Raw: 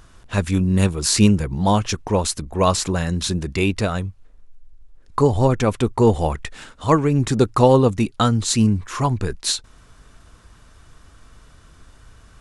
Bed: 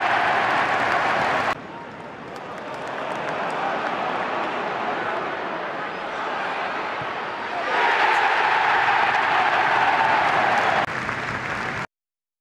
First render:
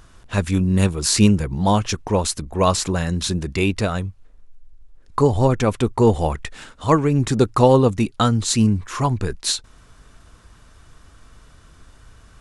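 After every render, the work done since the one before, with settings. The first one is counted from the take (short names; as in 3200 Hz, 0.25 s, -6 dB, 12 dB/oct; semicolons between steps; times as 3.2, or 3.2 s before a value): nothing audible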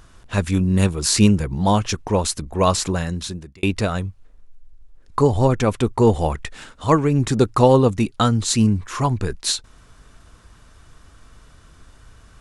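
2.9–3.63 fade out linear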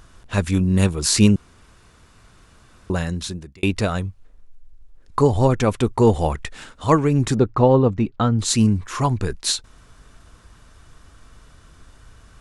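1.36–2.9 room tone; 7.39–8.39 tape spacing loss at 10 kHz 29 dB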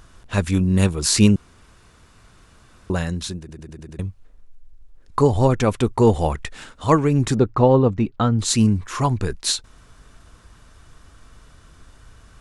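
3.39 stutter in place 0.10 s, 6 plays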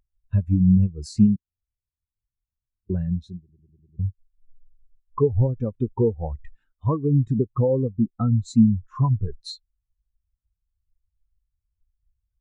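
compressor 8:1, threshold -20 dBFS, peak gain reduction 12 dB; spectral expander 2.5:1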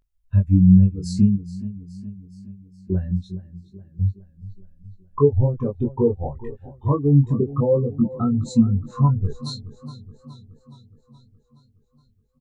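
doubler 21 ms -2 dB; warbling echo 0.42 s, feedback 59%, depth 57 cents, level -17 dB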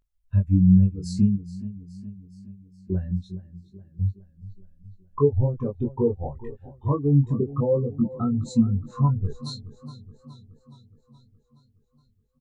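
gain -3.5 dB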